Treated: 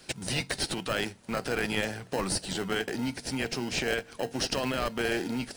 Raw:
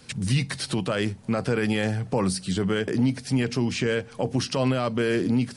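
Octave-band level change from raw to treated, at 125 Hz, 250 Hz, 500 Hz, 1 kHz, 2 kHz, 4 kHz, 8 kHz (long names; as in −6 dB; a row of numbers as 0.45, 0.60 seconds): −12.5, −9.0, −5.5, −2.5, −0.5, 0.0, +0.5 decibels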